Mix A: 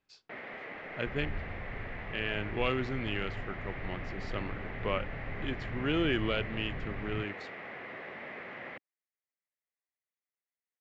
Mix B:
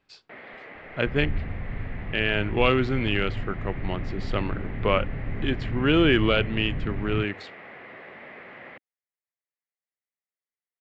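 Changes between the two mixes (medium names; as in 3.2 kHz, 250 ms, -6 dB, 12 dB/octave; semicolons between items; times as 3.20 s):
speech +10.0 dB; second sound +10.0 dB; master: add peaking EQ 6.2 kHz -6 dB 0.61 oct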